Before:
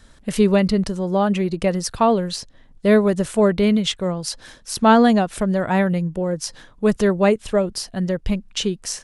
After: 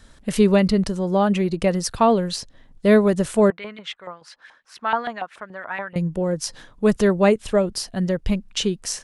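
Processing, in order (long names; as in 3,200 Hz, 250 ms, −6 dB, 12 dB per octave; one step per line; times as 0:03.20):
0:03.50–0:05.96: auto-filter band-pass saw up 7 Hz 900–2,400 Hz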